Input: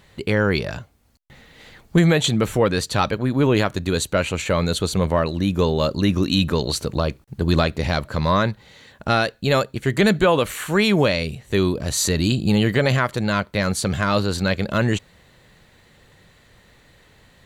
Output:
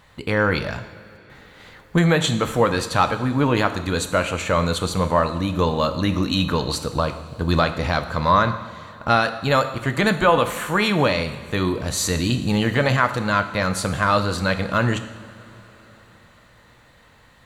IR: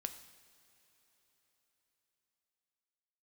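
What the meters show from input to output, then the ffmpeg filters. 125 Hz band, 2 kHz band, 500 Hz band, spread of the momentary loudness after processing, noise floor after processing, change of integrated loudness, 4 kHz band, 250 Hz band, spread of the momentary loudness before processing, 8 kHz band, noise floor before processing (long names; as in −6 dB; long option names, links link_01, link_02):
−1.5 dB, +1.5 dB, −1.0 dB, 7 LU, −52 dBFS, −0.5 dB, −1.0 dB, −2.0 dB, 6 LU, −2.0 dB, −55 dBFS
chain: -filter_complex "[0:a]equalizer=frequency=1100:width_type=o:width=1.2:gain=7.5,bandreject=frequency=390:width=12[link_01];[1:a]atrim=start_sample=2205[link_02];[link_01][link_02]afir=irnorm=-1:irlink=0"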